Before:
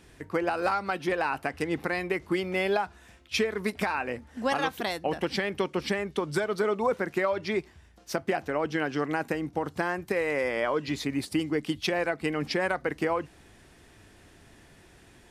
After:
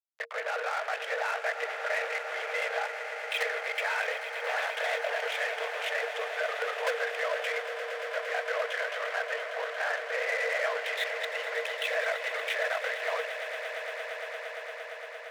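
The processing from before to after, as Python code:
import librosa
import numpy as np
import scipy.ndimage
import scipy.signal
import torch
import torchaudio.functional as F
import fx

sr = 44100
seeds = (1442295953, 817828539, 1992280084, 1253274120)

y = fx.lpc_vocoder(x, sr, seeds[0], excitation='whisper', order=10)
y = fx.level_steps(y, sr, step_db=23)
y = fx.fuzz(y, sr, gain_db=44.0, gate_db=-53.0)
y = scipy.signal.sosfilt(scipy.signal.cheby1(6, 9, 450.0, 'highpass', fs=sr, output='sos'), y)
y = fx.echo_swell(y, sr, ms=115, loudest=8, wet_db=-14.5)
y = y * librosa.db_to_amplitude(-6.5)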